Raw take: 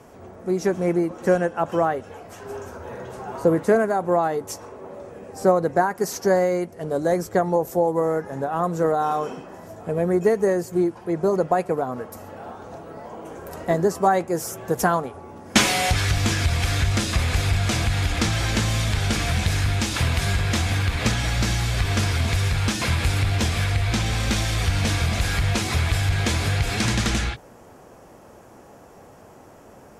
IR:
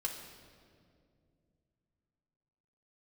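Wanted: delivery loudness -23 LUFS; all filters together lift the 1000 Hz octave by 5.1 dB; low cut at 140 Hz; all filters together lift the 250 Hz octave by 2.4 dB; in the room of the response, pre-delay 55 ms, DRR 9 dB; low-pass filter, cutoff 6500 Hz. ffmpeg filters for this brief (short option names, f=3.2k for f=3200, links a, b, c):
-filter_complex "[0:a]highpass=140,lowpass=6.5k,equalizer=f=250:t=o:g=4,equalizer=f=1k:t=o:g=7,asplit=2[a][b];[1:a]atrim=start_sample=2205,adelay=55[c];[b][c]afir=irnorm=-1:irlink=0,volume=-10.5dB[d];[a][d]amix=inputs=2:normalize=0,volume=-2dB"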